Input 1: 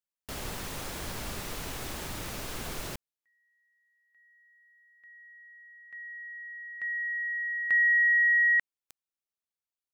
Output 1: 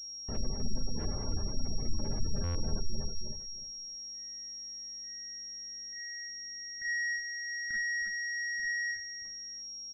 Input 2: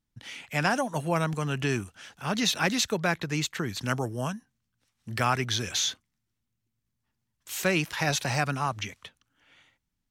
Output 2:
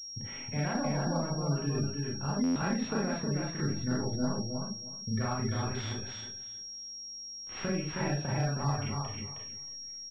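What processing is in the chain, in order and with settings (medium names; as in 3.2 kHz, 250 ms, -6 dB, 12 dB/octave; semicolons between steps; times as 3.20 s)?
companding laws mixed up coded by A; tilt EQ -3 dB/octave; compression 6:1, threshold -35 dBFS; mains buzz 50 Hz, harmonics 25, -75 dBFS -6 dB/octave; on a send: feedback delay 315 ms, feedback 19%, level -3.5 dB; on the sum: Schroeder reverb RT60 0.35 s, combs from 28 ms, DRR -4 dB; spectral gate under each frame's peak -30 dB strong; buffer glitch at 2.43 s, samples 512, times 10; class-D stage that switches slowly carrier 5.6 kHz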